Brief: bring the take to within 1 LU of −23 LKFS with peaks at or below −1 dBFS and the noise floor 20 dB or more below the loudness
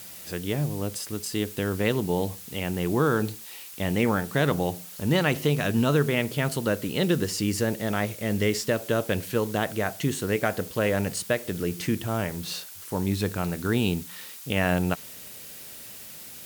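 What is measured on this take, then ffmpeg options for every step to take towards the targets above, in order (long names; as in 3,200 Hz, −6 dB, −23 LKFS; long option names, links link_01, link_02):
background noise floor −43 dBFS; target noise floor −47 dBFS; integrated loudness −27.0 LKFS; sample peak −9.0 dBFS; target loudness −23.0 LKFS
→ -af "afftdn=noise_reduction=6:noise_floor=-43"
-af "volume=4dB"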